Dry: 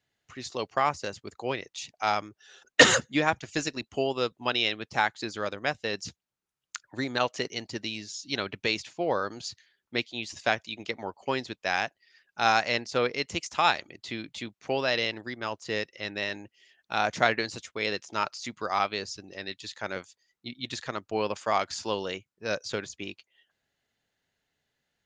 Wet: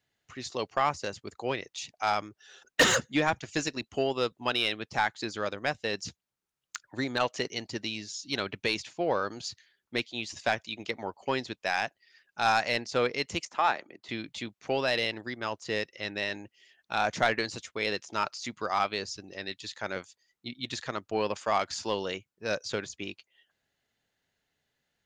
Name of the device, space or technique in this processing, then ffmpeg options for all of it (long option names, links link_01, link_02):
saturation between pre-emphasis and de-emphasis: -filter_complex "[0:a]asettb=1/sr,asplit=3[link_01][link_02][link_03];[link_01]atrim=end=13.454[link_04];[link_02]atrim=start=13.45:end=14.09,asetpts=PTS-STARTPTS,afade=type=in:duration=0.004:curve=qsin,afade=type=out:start_time=0.636:duration=0.004:curve=qsin,acrossover=split=180 2100:gain=0.0794 1 0.251[link_05][link_06][link_07];[link_05][link_06][link_07]amix=inputs=3:normalize=0[link_08];[link_03]atrim=start=14.086[link_09];[link_04][link_08]acrossfade=duration=0.004:curve1=hsin:curve2=qsin[link_10];[link_10][link_09]acrossfade=duration=0.004:curve1=qsin:curve2=hsin,highshelf=frequency=3700:gain=9.5,asoftclip=type=tanh:threshold=-13dB,highshelf=frequency=3700:gain=-9.5"